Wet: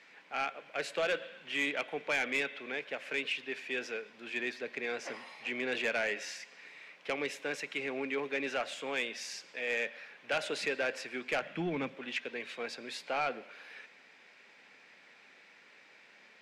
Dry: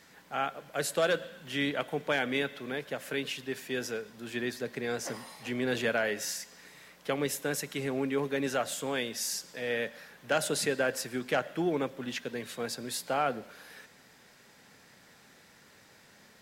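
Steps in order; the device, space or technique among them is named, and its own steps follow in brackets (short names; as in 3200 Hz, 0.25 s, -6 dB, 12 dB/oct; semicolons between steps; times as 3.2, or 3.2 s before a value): intercom (BPF 310–4500 Hz; bell 2400 Hz +11 dB 0.55 oct; soft clip -20.5 dBFS, distortion -15 dB); 11.42–11.95 resonant low shelf 270 Hz +11 dB, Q 1.5; gain -3 dB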